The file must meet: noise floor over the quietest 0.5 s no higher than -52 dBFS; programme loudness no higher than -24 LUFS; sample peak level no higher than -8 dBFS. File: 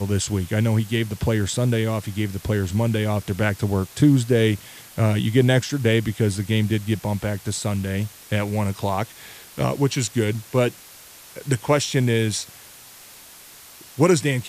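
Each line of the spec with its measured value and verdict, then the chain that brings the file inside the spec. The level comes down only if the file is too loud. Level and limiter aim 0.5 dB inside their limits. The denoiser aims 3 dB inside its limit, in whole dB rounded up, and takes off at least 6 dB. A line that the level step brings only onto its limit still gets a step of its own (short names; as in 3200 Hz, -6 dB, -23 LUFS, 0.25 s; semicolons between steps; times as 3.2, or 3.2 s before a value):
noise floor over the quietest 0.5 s -45 dBFS: fail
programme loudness -22.0 LUFS: fail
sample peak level -5.5 dBFS: fail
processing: denoiser 8 dB, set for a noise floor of -45 dBFS; gain -2.5 dB; limiter -8.5 dBFS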